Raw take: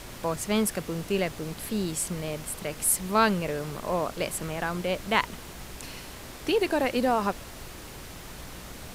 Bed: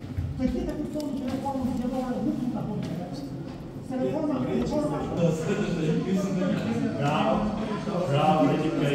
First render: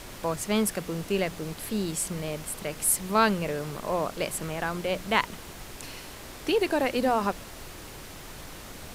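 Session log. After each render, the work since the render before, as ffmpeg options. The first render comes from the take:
-af "bandreject=f=60:t=h:w=4,bandreject=f=120:t=h:w=4,bandreject=f=180:t=h:w=4,bandreject=f=240:t=h:w=4"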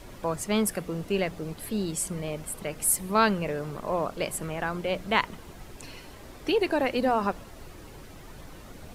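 -af "afftdn=nr=9:nf=-43"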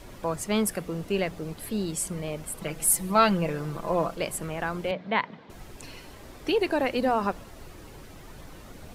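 -filter_complex "[0:a]asettb=1/sr,asplit=3[s0][s1][s2];[s0]atrim=end=2.614[s3];[s1]atrim=start=2.61:end=4.15,asetpts=PTS-STARTPTS,afade=t=in:d=0.004:c=qsin,afade=t=out:st=1.536:d=0.004:c=qsin,aecho=1:1:6:0.68,atrim=end_sample=67914[s4];[s2]atrim=start=4.146[s5];[s3][s4]acrossfade=d=0.004:c1=hsin:c2=qsin[s6];[s6][s5]acrossfade=d=0.004:c1=qsin:c2=hsin,asettb=1/sr,asplit=3[s7][s8][s9];[s7]atrim=end=4.914[s10];[s8]atrim=start=4.91:end=5.5,asetpts=PTS-STARTPTS,afade=t=in:d=0.004:c=qsin,afade=t=out:st=0.586:d=0.004:c=qsin,highpass=f=140:w=0.5412,highpass=f=140:w=1.3066,equalizer=f=350:t=q:w=4:g=-7,equalizer=f=1300:t=q:w=4:g=-6,equalizer=f=2800:t=q:w=4:g=-7,lowpass=f=3600:w=0.5412,lowpass=f=3600:w=1.3066[s11];[s9]atrim=start=5.496[s12];[s10][s11]acrossfade=d=0.004:c1=hsin:c2=qsin[s13];[s13][s12]acrossfade=d=0.004:c1=qsin:c2=hsin"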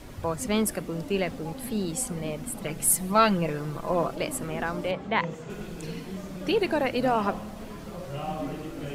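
-filter_complex "[1:a]volume=0.266[s0];[0:a][s0]amix=inputs=2:normalize=0"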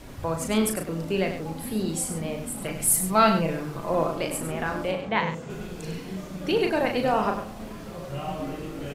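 -filter_complex "[0:a]asplit=2[s0][s1];[s1]adelay=37,volume=0.501[s2];[s0][s2]amix=inputs=2:normalize=0,aecho=1:1:99:0.355"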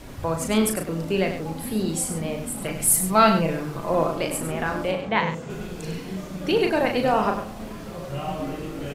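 -af "volume=1.33"

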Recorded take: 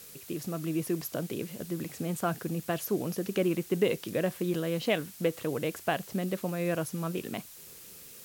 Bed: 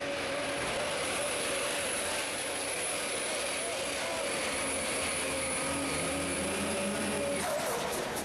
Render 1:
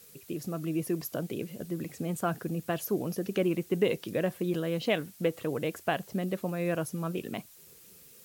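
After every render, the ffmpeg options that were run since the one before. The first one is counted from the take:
-af "afftdn=nr=7:nf=-49"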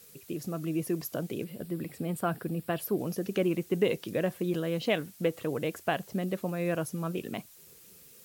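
-filter_complex "[0:a]asettb=1/sr,asplit=3[s0][s1][s2];[s0]atrim=end=1.444[s3];[s1]atrim=start=1.44:end=2.99,asetpts=PTS-STARTPTS,afade=t=in:d=0.004:c=qsin,afade=t=out:st=1.546:d=0.004:c=qsin,equalizer=f=6400:w=4.3:g=-12.5[s4];[s2]atrim=start=2.986[s5];[s3][s4]acrossfade=d=0.004:c1=hsin:c2=qsin[s6];[s6][s5]acrossfade=d=0.004:c1=qsin:c2=hsin"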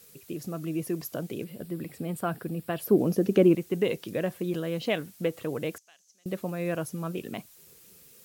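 -filter_complex "[0:a]asettb=1/sr,asplit=3[s0][s1][s2];[s0]atrim=end=2.854[s3];[s1]atrim=start=2.85:end=3.55,asetpts=PTS-STARTPTS,afade=t=in:d=0.004:c=qsin,afade=t=out:st=0.696:d=0.004:c=qsin,equalizer=f=290:w=0.46:g=9.5[s4];[s2]atrim=start=3.546[s5];[s3][s4]acrossfade=d=0.004:c1=hsin:c2=qsin[s6];[s6][s5]acrossfade=d=0.004:c1=qsin:c2=hsin,asettb=1/sr,asplit=3[s7][s8][s9];[s7]atrim=end=5.784[s10];[s8]atrim=start=5.78:end=6.26,asetpts=PTS-STARTPTS,afade=t=in:d=0.004:c=qsin,afade=t=out:st=0.476:d=0.004:c=qsin,bandpass=f=6200:t=q:w=5.7[s11];[s9]atrim=start=6.256[s12];[s10][s11]acrossfade=d=0.004:c1=hsin:c2=qsin[s13];[s13][s12]acrossfade=d=0.004:c1=qsin:c2=hsin"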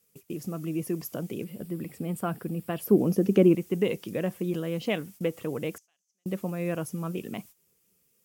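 -af "agate=range=0.178:threshold=0.00398:ratio=16:detection=peak,equalizer=f=200:t=o:w=0.33:g=4,equalizer=f=630:t=o:w=0.33:g=-3,equalizer=f=1600:t=o:w=0.33:g=-4,equalizer=f=4000:t=o:w=0.33:g=-7"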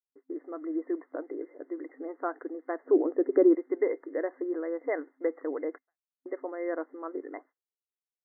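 -af "afftfilt=real='re*between(b*sr/4096,260,2100)':imag='im*between(b*sr/4096,260,2100)':win_size=4096:overlap=0.75,agate=range=0.0224:threshold=0.00282:ratio=3:detection=peak"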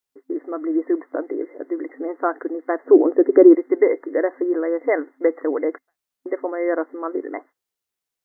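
-af "volume=3.55,alimiter=limit=0.891:level=0:latency=1"

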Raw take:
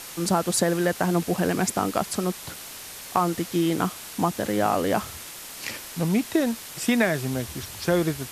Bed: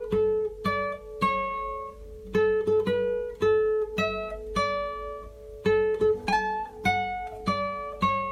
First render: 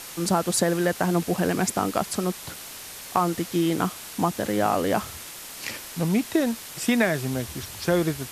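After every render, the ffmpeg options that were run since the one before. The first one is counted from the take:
-af anull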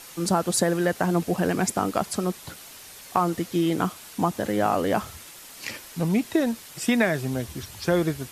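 -af "afftdn=nr=6:nf=-40"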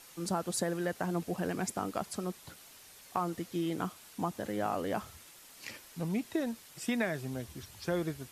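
-af "volume=0.299"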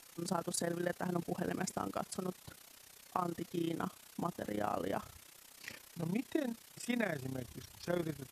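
-af "tremolo=f=31:d=0.788"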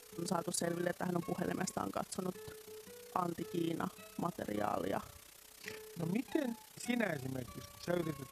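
-filter_complex "[1:a]volume=0.0335[s0];[0:a][s0]amix=inputs=2:normalize=0"

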